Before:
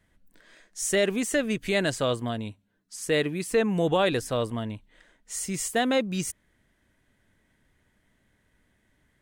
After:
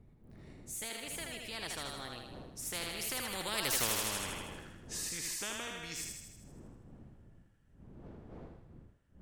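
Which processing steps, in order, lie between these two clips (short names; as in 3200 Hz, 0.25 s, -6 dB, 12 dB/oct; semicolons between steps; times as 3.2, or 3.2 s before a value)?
wind noise 150 Hz -36 dBFS; Doppler pass-by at 3.77, 41 m/s, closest 2.6 m; on a send: thinning echo 79 ms, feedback 59%, high-pass 590 Hz, level -4.5 dB; on the sum: spectral compressor 4:1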